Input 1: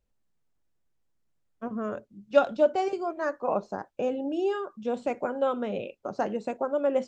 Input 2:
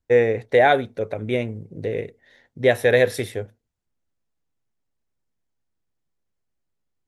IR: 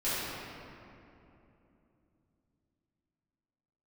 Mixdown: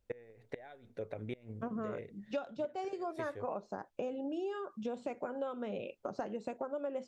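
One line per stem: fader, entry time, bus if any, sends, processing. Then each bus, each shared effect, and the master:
0.0 dB, 0.00 s, no send, none
-12.0 dB, 0.00 s, no send, treble shelf 8.7 kHz -10 dB; inverted gate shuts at -11 dBFS, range -25 dB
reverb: none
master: compression 6:1, threshold -36 dBFS, peak gain reduction 20.5 dB

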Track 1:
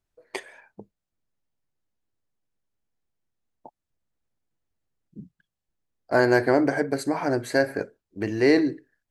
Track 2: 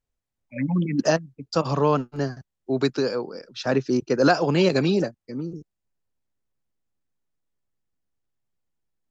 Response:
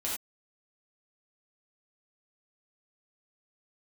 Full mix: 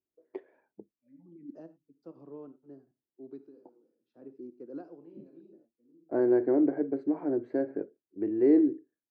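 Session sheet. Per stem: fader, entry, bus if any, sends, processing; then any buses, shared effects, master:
0.0 dB, 0.00 s, no send, low-pass 3.4 kHz 12 dB/octave
-19.5 dB, 0.50 s, send -15 dB, auto duck -22 dB, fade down 0.25 s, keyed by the first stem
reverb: on, pre-delay 3 ms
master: band-pass filter 330 Hz, Q 2.9

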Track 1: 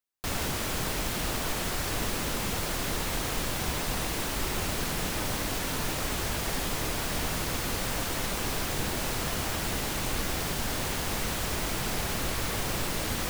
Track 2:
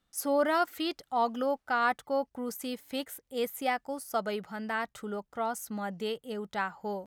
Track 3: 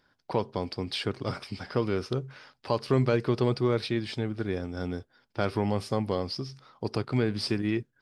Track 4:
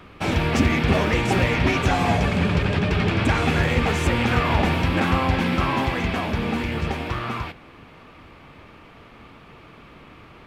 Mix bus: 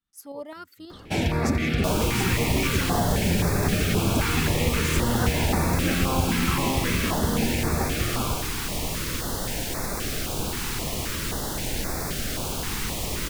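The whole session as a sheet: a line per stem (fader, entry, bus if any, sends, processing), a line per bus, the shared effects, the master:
+2.5 dB, 1.60 s, no send, none
-8.0 dB, 0.00 s, no send, tremolo saw up 9.4 Hz, depth 50%
-11.0 dB, 0.00 s, no send, expander on every frequency bin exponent 3
+1.0 dB, 0.90 s, no send, treble shelf 8.6 kHz +7 dB; compression, threshold -20 dBFS, peak gain reduction 7 dB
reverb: none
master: step-sequenced notch 3.8 Hz 600–3000 Hz

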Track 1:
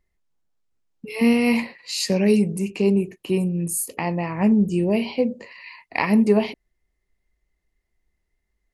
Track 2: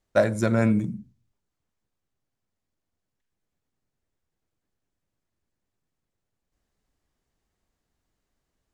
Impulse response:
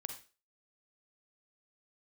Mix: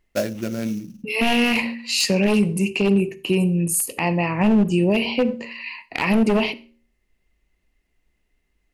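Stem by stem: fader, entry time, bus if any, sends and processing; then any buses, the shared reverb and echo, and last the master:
+2.0 dB, 0.00 s, send -8 dB, one-sided wavefolder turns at -16 dBFS
+1.0 dB, 0.00 s, no send, graphic EQ 125/250/1000/8000 Hz -6/+5/-10/-11 dB; sample-rate reducer 6 kHz, jitter 20%; auto duck -20 dB, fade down 1.95 s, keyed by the first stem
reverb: on, RT60 0.35 s, pre-delay 37 ms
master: peaking EQ 2.7 kHz +9 dB 0.32 oct; de-hum 77.64 Hz, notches 7; peak limiter -9.5 dBFS, peak gain reduction 8.5 dB

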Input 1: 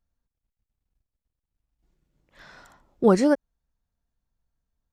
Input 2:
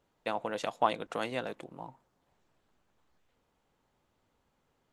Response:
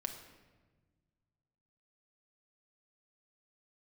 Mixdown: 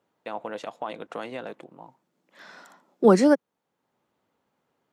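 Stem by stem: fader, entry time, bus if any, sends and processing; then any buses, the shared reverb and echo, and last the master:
+2.0 dB, 0.00 s, no send, steep high-pass 160 Hz 72 dB/octave; treble shelf 3.7 kHz +8 dB
+2.0 dB, 0.00 s, no send, peak limiter -22 dBFS, peak gain reduction 10 dB; auto duck -10 dB, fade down 0.75 s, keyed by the first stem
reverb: none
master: high-pass 160 Hz 12 dB/octave; treble shelf 3.7 kHz -8.5 dB

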